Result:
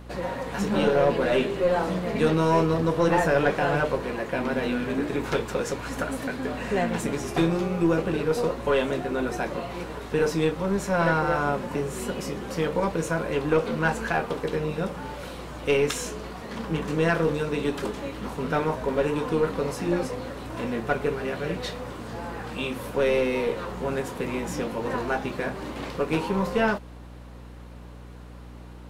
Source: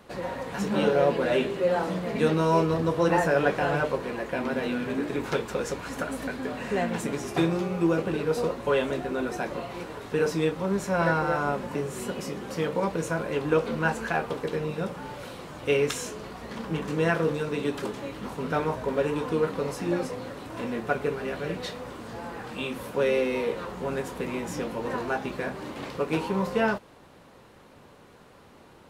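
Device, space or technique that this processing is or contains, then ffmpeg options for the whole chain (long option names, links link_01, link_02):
valve amplifier with mains hum: -af "aeval=exprs='(tanh(5.62*val(0)+0.3)-tanh(0.3))/5.62':channel_layout=same,aeval=exprs='val(0)+0.00562*(sin(2*PI*60*n/s)+sin(2*PI*2*60*n/s)/2+sin(2*PI*3*60*n/s)/3+sin(2*PI*4*60*n/s)/4+sin(2*PI*5*60*n/s)/5)':channel_layout=same,volume=3dB"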